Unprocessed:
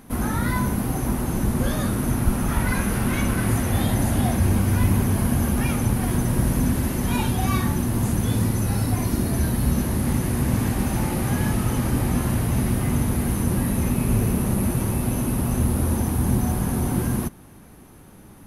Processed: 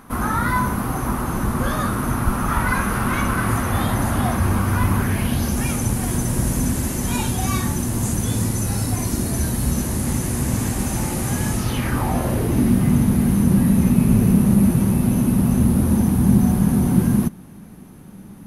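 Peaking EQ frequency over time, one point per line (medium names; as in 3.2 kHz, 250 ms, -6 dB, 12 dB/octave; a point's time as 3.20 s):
peaking EQ +11.5 dB 0.89 oct
4.96 s 1.2 kHz
5.60 s 7.4 kHz
11.56 s 7.4 kHz
12.05 s 880 Hz
12.81 s 190 Hz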